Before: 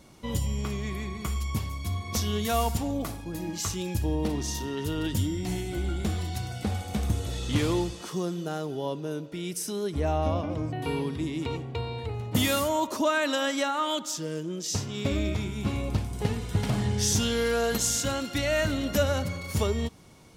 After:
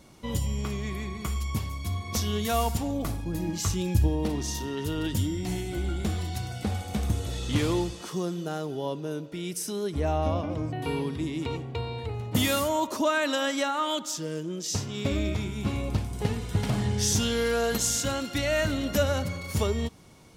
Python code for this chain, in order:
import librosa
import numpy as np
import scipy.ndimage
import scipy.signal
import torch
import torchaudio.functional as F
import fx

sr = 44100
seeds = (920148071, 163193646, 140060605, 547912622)

y = fx.low_shelf(x, sr, hz=200.0, db=8.5, at=(3.04, 4.08))